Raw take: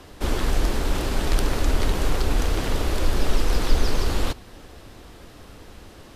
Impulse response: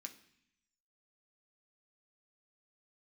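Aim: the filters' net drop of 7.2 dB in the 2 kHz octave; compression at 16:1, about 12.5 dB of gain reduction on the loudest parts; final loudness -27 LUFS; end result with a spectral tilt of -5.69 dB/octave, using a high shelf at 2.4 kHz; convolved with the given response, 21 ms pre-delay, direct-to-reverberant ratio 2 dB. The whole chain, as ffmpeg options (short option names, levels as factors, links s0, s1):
-filter_complex "[0:a]equalizer=f=2000:t=o:g=-7,highshelf=f=2400:g=-5.5,acompressor=threshold=0.0708:ratio=16,asplit=2[s0][s1];[1:a]atrim=start_sample=2205,adelay=21[s2];[s1][s2]afir=irnorm=-1:irlink=0,volume=1.5[s3];[s0][s3]amix=inputs=2:normalize=0,volume=1.88"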